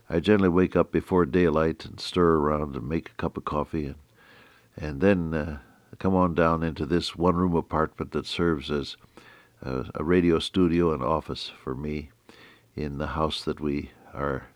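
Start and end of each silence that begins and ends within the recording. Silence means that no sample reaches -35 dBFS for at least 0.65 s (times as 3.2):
3.93–4.78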